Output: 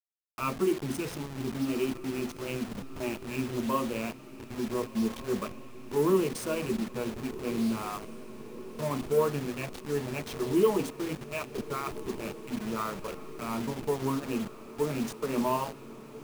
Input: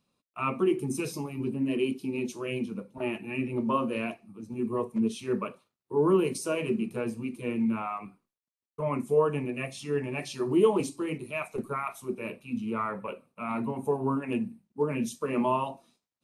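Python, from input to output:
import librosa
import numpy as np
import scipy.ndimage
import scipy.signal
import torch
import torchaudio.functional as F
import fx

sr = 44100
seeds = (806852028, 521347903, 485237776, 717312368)

y = fx.delta_hold(x, sr, step_db=-33.0)
y = fx.echo_diffused(y, sr, ms=1448, feedback_pct=68, wet_db=-15.0)
y = y * 10.0 ** (-1.5 / 20.0)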